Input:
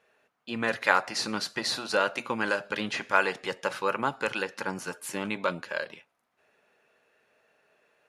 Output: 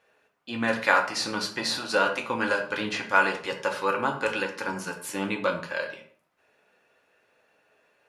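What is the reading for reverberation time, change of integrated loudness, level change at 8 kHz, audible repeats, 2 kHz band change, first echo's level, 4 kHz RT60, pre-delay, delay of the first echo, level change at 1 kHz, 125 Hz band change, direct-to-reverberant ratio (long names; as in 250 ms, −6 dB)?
0.50 s, +2.5 dB, +1.5 dB, no echo audible, +2.5 dB, no echo audible, 0.35 s, 3 ms, no echo audible, +2.5 dB, +2.5 dB, 2.5 dB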